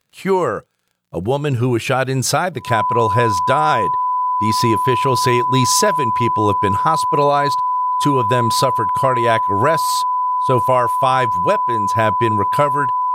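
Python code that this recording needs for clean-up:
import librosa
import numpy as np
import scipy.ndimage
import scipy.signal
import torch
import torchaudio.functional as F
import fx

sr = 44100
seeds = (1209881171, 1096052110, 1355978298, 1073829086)

y = fx.fix_declick_ar(x, sr, threshold=6.5)
y = fx.notch(y, sr, hz=1000.0, q=30.0)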